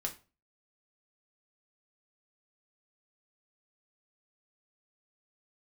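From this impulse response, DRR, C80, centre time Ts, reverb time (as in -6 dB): 1.0 dB, 19.5 dB, 11 ms, 0.35 s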